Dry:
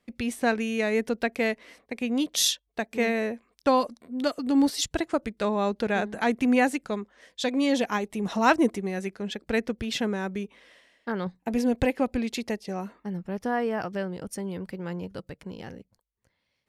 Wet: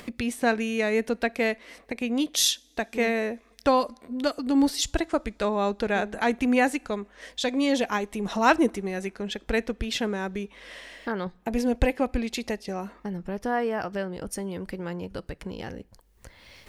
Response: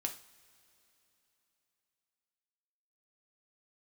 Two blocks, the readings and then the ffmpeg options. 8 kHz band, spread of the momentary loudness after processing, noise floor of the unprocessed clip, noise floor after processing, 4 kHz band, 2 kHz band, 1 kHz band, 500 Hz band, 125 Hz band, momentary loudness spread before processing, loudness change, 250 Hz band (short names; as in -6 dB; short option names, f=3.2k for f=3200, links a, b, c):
+1.0 dB, 13 LU, -77 dBFS, -59 dBFS, +1.5 dB, +1.0 dB, +1.0 dB, +1.0 dB, 0.0 dB, 12 LU, +0.5 dB, -0.5 dB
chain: -filter_complex "[0:a]asubboost=boost=5:cutoff=55,acompressor=mode=upward:threshold=-29dB:ratio=2.5,asplit=2[a][b];[1:a]atrim=start_sample=2205[c];[b][c]afir=irnorm=-1:irlink=0,volume=-16dB[d];[a][d]amix=inputs=2:normalize=0"